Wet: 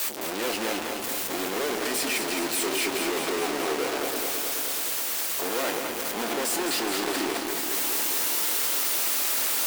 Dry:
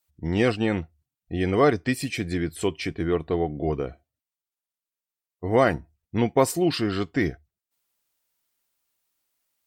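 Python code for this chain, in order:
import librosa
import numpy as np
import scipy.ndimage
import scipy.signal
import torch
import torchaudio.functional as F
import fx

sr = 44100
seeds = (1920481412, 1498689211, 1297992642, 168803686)

y = np.sign(x) * np.sqrt(np.mean(np.square(x)))
y = scipy.signal.sosfilt(scipy.signal.butter(4, 270.0, 'highpass', fs=sr, output='sos'), y)
y = np.sign(y) * np.maximum(np.abs(y) - 10.0 ** (-49.5 / 20.0), 0.0)
y = fx.doubler(y, sr, ms=26.0, db=-11.0)
y = fx.echo_crushed(y, sr, ms=212, feedback_pct=80, bits=7, wet_db=-5)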